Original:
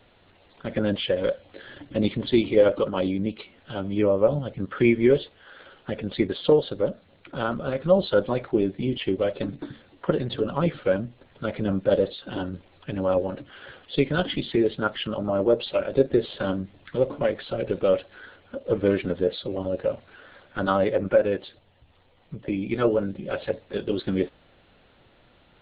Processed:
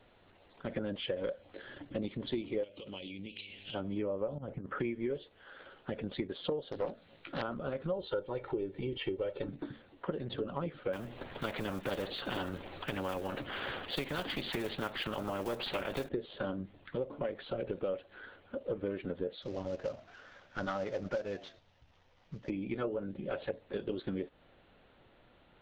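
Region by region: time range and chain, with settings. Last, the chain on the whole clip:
0:02.63–0:03.73: high shelf with overshoot 1,900 Hz +12 dB, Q 3 + downward compressor 16 to 1, threshold −34 dBFS + hum with harmonics 100 Hz, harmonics 5, −56 dBFS
0:04.38–0:04.80: low-pass filter 1,800 Hz + compressor whose output falls as the input rises −32 dBFS, ratio −0.5
0:06.72–0:07.42: high-shelf EQ 2,000 Hz +10 dB + double-tracking delay 18 ms −5 dB + highs frequency-modulated by the lows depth 0.45 ms
0:07.93–0:09.49: comb filter 2.2 ms, depth 57% + upward compression, threshold −26 dBFS
0:10.93–0:16.09: one scale factor per block 7 bits + every bin compressed towards the loudest bin 2 to 1
0:19.42–0:22.50: variable-slope delta modulation 32 kbit/s + parametric band 360 Hz −5 dB 1.6 octaves + echo with shifted repeats 110 ms, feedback 34%, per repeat +80 Hz, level −22.5 dB
whole clip: high-shelf EQ 3,100 Hz −7 dB; downward compressor 6 to 1, threshold −28 dBFS; parametric band 85 Hz −3 dB 2.5 octaves; level −4 dB

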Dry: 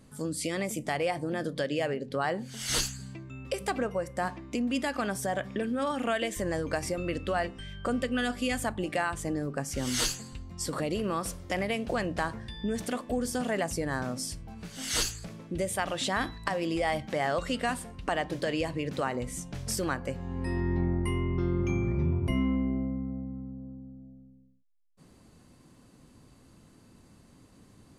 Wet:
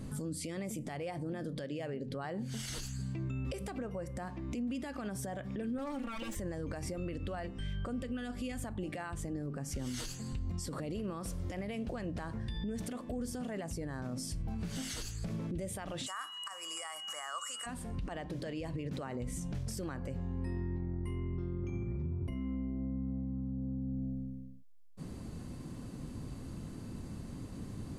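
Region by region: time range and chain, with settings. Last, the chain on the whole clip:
0:05.78–0:06.35: lower of the sound and its delayed copy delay 3.6 ms + comb filter 3.6 ms, depth 32%
0:16.06–0:17.65: high shelf with overshoot 5,300 Hz +13 dB, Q 3 + steady tone 2,900 Hz −34 dBFS + high-pass with resonance 1,200 Hz, resonance Q 5.6
whole clip: downward compressor 5 to 1, threshold −45 dBFS; low-shelf EQ 360 Hz +10 dB; brickwall limiter −36 dBFS; level +5.5 dB

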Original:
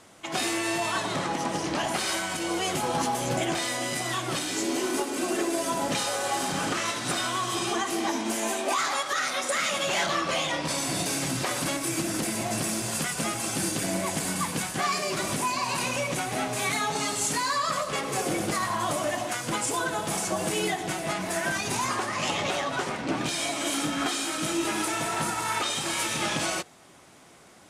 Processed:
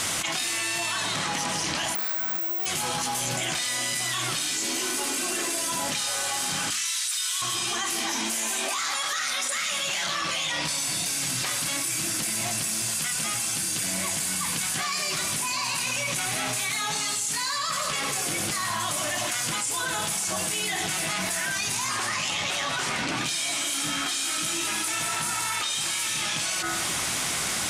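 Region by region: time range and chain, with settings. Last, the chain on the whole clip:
0:01.95–0:02.66: running median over 15 samples + high-pass filter 160 Hz + bad sample-rate conversion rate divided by 2×, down none, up zero stuff
0:06.70–0:07.42: Bessel high-pass filter 2,300 Hz + high-shelf EQ 6,000 Hz +7.5 dB
whole clip: guitar amp tone stack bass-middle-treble 5-5-5; hum removal 66.86 Hz, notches 31; envelope flattener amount 100%; level +4 dB

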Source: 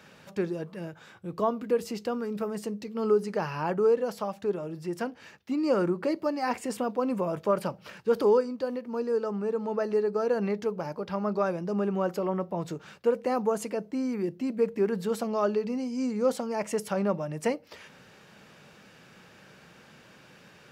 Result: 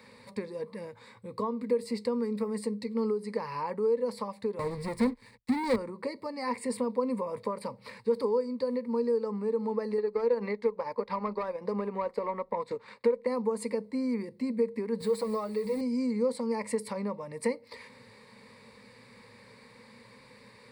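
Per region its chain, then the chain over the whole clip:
0:04.59–0:05.76: bass and treble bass +11 dB, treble −1 dB + leveller curve on the samples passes 5 + expander for the loud parts 2.5 to 1, over −30 dBFS
0:09.98–0:13.27: transient designer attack +4 dB, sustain −9 dB + mid-hump overdrive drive 16 dB, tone 2,000 Hz, clips at −10.5 dBFS
0:15.00–0:15.81: hold until the input has moved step −45.5 dBFS + comb filter 6.3 ms, depth 97%
whole clip: downward compressor 3 to 1, threshold −30 dBFS; EQ curve with evenly spaced ripples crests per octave 0.95, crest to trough 16 dB; level −3 dB

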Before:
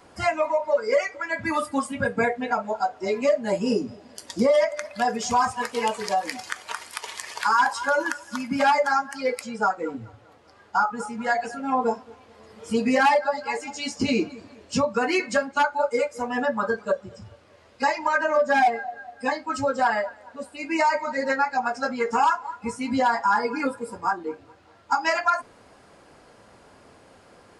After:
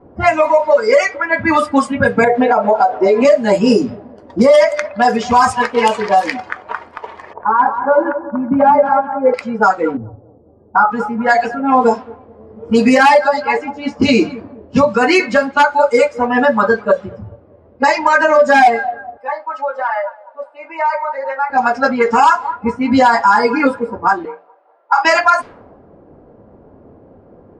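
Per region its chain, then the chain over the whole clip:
0:02.24–0:03.25: parametric band 580 Hz +12 dB 2.4 octaves + downward compressor, threshold −21 dBFS
0:07.33–0:09.34: Chebyshev low-pass filter 720 Hz + repeating echo 184 ms, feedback 43%, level −10 dB
0:09.97–0:10.92: low-pass that shuts in the quiet parts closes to 580 Hz, open at −19 dBFS + low-pass filter 1,900 Hz
0:19.17–0:21.50: high-pass filter 670 Hz 24 dB per octave + comb filter 3.4 ms, depth 68% + downward compressor 2.5 to 1, threshold −30 dBFS
0:24.25–0:25.05: treble cut that deepens with the level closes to 2,900 Hz, closed at −20.5 dBFS + high-pass filter 620 Hz 24 dB per octave + double-tracking delay 39 ms −7 dB
whole clip: mains-hum notches 60/120/180 Hz; low-pass that shuts in the quiet parts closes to 440 Hz, open at −18 dBFS; boost into a limiter +14 dB; level −1 dB

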